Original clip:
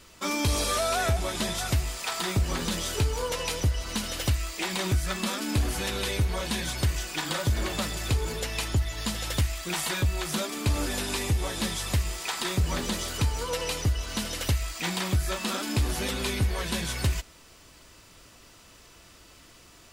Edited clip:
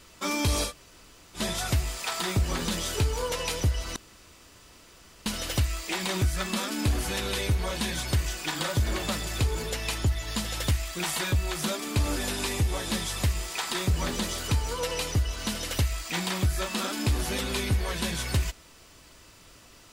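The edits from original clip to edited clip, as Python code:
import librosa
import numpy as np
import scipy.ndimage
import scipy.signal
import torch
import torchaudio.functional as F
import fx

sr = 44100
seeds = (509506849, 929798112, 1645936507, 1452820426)

y = fx.edit(x, sr, fx.room_tone_fill(start_s=0.68, length_s=0.7, crossfade_s=0.1),
    fx.insert_room_tone(at_s=3.96, length_s=1.3), tone=tone)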